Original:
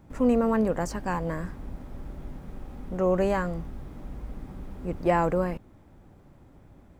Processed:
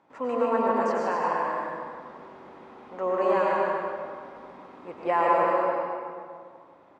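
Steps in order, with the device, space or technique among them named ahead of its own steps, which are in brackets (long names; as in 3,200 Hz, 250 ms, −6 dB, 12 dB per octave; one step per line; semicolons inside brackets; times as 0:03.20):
station announcement (band-pass filter 480–3,900 Hz; parametric band 1,000 Hz +6 dB 0.42 octaves; loudspeakers that aren't time-aligned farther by 52 metres −5 dB, 87 metres −9 dB; convolution reverb RT60 2.1 s, pre-delay 90 ms, DRR −2.5 dB)
level −2 dB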